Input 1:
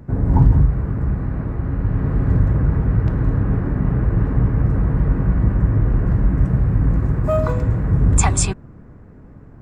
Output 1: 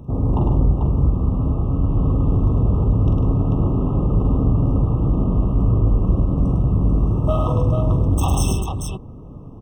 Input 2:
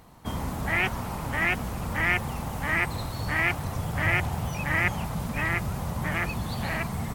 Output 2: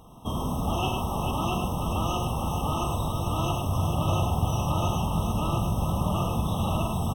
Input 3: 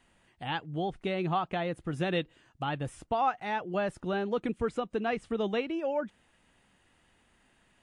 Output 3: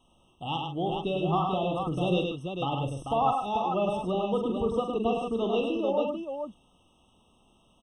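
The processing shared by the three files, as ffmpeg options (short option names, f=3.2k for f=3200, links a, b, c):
-filter_complex "[0:a]asoftclip=type=tanh:threshold=-18dB,asplit=2[a][b];[b]aecho=0:1:44|103|147|441:0.447|0.596|0.266|0.531[c];[a][c]amix=inputs=2:normalize=0,afftfilt=real='re*eq(mod(floor(b*sr/1024/1300),2),0)':imag='im*eq(mod(floor(b*sr/1024/1300),2),0)':win_size=1024:overlap=0.75,volume=2dB"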